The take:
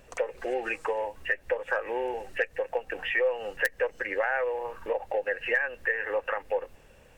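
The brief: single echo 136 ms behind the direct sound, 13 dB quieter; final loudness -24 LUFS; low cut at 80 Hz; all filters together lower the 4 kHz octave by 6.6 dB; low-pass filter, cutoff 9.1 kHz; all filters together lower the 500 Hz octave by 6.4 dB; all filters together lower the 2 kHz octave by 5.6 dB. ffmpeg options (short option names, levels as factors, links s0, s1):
-af "highpass=80,lowpass=9100,equalizer=f=500:t=o:g=-6.5,equalizer=f=2000:t=o:g=-5,equalizer=f=4000:t=o:g=-7.5,aecho=1:1:136:0.224,volume=3.76"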